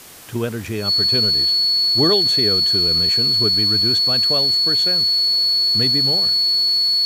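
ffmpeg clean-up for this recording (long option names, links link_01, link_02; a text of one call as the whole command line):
ffmpeg -i in.wav -af "adeclick=threshold=4,bandreject=frequency=4400:width=30,afwtdn=0.01" out.wav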